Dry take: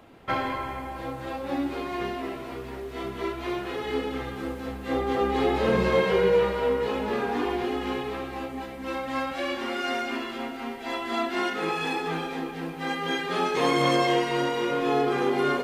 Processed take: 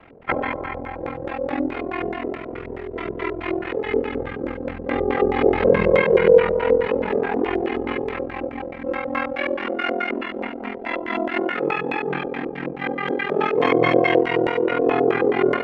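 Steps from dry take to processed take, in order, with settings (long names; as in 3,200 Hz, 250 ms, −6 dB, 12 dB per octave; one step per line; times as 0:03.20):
ring modulation 21 Hz
auto-filter low-pass square 4.7 Hz 530–2,200 Hz
level +5.5 dB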